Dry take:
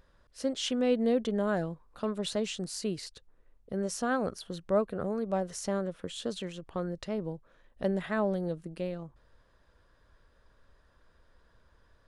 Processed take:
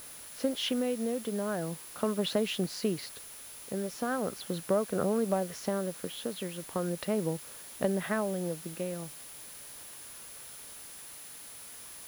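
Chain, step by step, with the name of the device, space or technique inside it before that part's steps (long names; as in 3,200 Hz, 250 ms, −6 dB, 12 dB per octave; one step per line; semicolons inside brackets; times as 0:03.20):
medium wave at night (band-pass filter 130–3,600 Hz; downward compressor, threshold −31 dBFS, peak gain reduction 9.5 dB; amplitude tremolo 0.4 Hz, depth 48%; steady tone 10,000 Hz −55 dBFS; white noise bed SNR 15 dB)
level +7 dB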